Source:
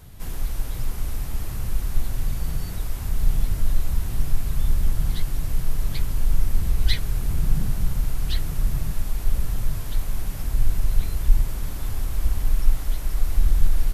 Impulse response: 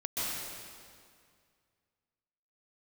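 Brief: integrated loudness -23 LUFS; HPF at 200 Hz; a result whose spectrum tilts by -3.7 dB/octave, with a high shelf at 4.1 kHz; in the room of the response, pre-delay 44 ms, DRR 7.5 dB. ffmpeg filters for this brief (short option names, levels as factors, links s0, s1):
-filter_complex "[0:a]highpass=200,highshelf=f=4100:g=-4.5,asplit=2[s0][s1];[1:a]atrim=start_sample=2205,adelay=44[s2];[s1][s2]afir=irnorm=-1:irlink=0,volume=0.2[s3];[s0][s3]amix=inputs=2:normalize=0,volume=5.96"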